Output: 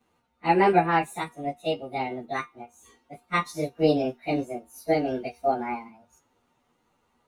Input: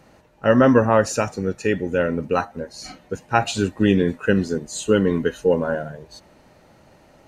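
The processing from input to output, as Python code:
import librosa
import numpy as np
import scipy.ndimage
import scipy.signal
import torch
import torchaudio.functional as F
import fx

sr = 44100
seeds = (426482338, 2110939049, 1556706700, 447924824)

y = fx.pitch_bins(x, sr, semitones=7.0)
y = fx.comb_fb(y, sr, f0_hz=240.0, decay_s=0.29, harmonics='all', damping=0.0, mix_pct=60)
y = fx.upward_expand(y, sr, threshold_db=-44.0, expansion=1.5)
y = F.gain(torch.from_numpy(y), 5.0).numpy()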